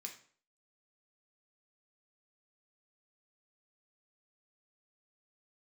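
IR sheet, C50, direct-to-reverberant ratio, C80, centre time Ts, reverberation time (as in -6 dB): 9.5 dB, 1.5 dB, 14.0 dB, 16 ms, 0.50 s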